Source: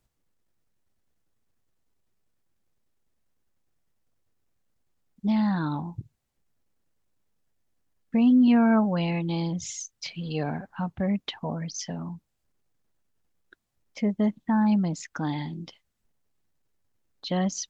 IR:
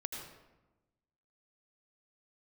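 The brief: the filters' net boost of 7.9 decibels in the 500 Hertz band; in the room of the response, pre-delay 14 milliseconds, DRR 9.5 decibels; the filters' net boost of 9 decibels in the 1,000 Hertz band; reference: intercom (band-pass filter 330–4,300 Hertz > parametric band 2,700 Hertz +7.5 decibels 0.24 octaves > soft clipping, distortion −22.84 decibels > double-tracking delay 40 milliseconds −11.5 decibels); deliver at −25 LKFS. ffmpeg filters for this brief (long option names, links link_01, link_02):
-filter_complex "[0:a]equalizer=frequency=500:width_type=o:gain=8,equalizer=frequency=1000:width_type=o:gain=8.5,asplit=2[link_01][link_02];[1:a]atrim=start_sample=2205,adelay=14[link_03];[link_02][link_03]afir=irnorm=-1:irlink=0,volume=-9.5dB[link_04];[link_01][link_04]amix=inputs=2:normalize=0,highpass=330,lowpass=4300,equalizer=frequency=2700:width_type=o:width=0.24:gain=7.5,asoftclip=threshold=-10.5dB,asplit=2[link_05][link_06];[link_06]adelay=40,volume=-11.5dB[link_07];[link_05][link_07]amix=inputs=2:normalize=0,volume=1.5dB"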